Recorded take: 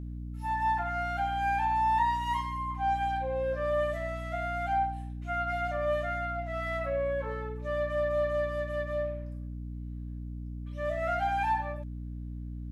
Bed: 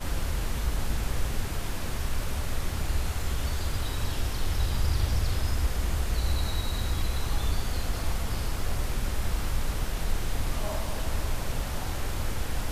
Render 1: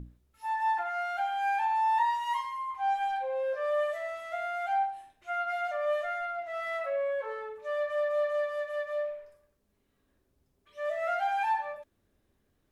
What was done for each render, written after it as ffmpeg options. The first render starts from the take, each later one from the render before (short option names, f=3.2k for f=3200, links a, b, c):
-af "bandreject=f=60:t=h:w=6,bandreject=f=120:t=h:w=6,bandreject=f=180:t=h:w=6,bandreject=f=240:t=h:w=6,bandreject=f=300:t=h:w=6,bandreject=f=360:t=h:w=6"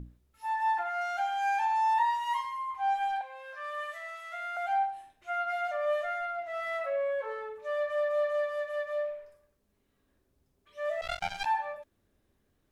-filter_complex "[0:a]asettb=1/sr,asplit=3[a][b][c];[a]atrim=end=1.014[d];[b]atrim=start=1.01:end=1.94,asetpts=PTS-STARTPTS,afade=t=in:d=0.004:c=qsin,afade=t=out:st=0.926:d=0.004:c=qsin,equalizer=f=6.1k:t=o:w=0.64:g=9[e];[c]atrim=start=1.936[f];[d][e]acrossfade=d=0.004:c1=hsin:c2=qsin[g];[g][f]acrossfade=d=0.004:c1=qsin:c2=hsin,asettb=1/sr,asplit=3[h][i][j];[h]atrim=end=3.214[k];[i]atrim=start=3.21:end=4.57,asetpts=PTS-STARTPTS,afade=t=in:d=0.004:c=qsin,afade=t=out:st=1.356:d=0.004:c=qsin,highpass=f=900:w=0.5412,highpass=f=900:w=1.3066[l];[j]atrim=start=4.566[m];[k][l]acrossfade=d=0.004:c1=hsin:c2=qsin[n];[n][m]acrossfade=d=0.004:c1=qsin:c2=hsin,asettb=1/sr,asplit=3[o][p][q];[o]atrim=end=11.014[r];[p]atrim=start=11.01:end=11.46,asetpts=PTS-STARTPTS,afade=t=in:d=0.004:c=qsin,afade=t=out:st=0.446:d=0.004:c=qsin,acrusher=bits=3:mix=0:aa=0.5[s];[q]atrim=start=11.456[t];[r][s]acrossfade=d=0.004:c1=hsin:c2=qsin[u];[u][t]acrossfade=d=0.004:c1=qsin:c2=hsin"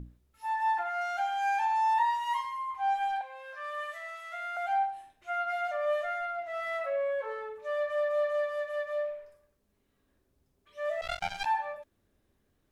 -af anull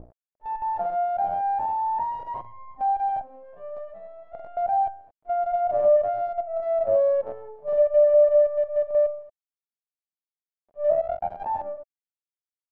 -af "acrusher=bits=6:dc=4:mix=0:aa=0.000001,lowpass=f=650:t=q:w=4.9"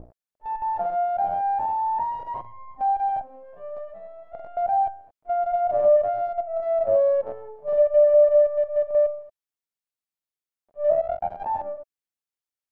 -af "volume=1dB"